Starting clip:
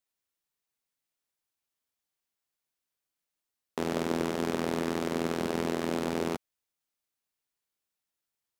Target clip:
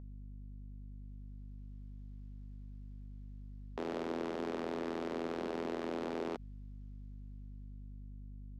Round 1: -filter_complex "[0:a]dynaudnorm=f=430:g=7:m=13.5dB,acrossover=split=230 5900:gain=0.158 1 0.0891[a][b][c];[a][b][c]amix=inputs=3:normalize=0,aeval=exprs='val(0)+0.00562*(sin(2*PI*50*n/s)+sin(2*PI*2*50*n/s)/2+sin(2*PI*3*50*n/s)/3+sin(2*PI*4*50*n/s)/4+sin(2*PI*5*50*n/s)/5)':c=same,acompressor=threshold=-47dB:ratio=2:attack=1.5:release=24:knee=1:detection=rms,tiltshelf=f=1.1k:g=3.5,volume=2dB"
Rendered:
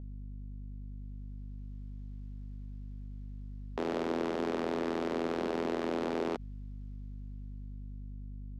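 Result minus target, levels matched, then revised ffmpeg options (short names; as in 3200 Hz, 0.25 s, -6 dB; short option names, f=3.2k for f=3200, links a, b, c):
compressor: peak gain reduction -5 dB
-filter_complex "[0:a]dynaudnorm=f=430:g=7:m=13.5dB,acrossover=split=230 5900:gain=0.158 1 0.0891[a][b][c];[a][b][c]amix=inputs=3:normalize=0,aeval=exprs='val(0)+0.00562*(sin(2*PI*50*n/s)+sin(2*PI*2*50*n/s)/2+sin(2*PI*3*50*n/s)/3+sin(2*PI*4*50*n/s)/4+sin(2*PI*5*50*n/s)/5)':c=same,acompressor=threshold=-57.5dB:ratio=2:attack=1.5:release=24:knee=1:detection=rms,tiltshelf=f=1.1k:g=3.5,volume=2dB"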